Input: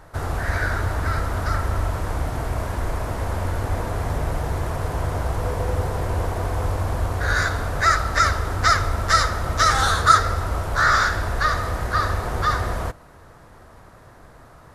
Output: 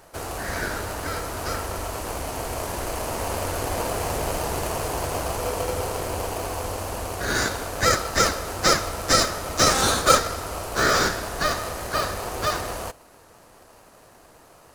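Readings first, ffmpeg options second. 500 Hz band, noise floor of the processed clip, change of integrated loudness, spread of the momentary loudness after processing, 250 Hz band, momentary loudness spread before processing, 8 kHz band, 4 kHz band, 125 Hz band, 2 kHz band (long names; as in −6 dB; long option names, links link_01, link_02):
+3.0 dB, −52 dBFS, −2.0 dB, 11 LU, +1.0 dB, 10 LU, +6.0 dB, +3.0 dB, −9.0 dB, −4.0 dB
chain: -filter_complex "[0:a]bass=frequency=250:gain=-13,treble=frequency=4000:gain=11,dynaudnorm=framelen=410:gausssize=17:maxgain=11.5dB,asplit=2[link_01][link_02];[link_02]acrusher=samples=24:mix=1:aa=0.000001,volume=-3dB[link_03];[link_01][link_03]amix=inputs=2:normalize=0,volume=-4.5dB"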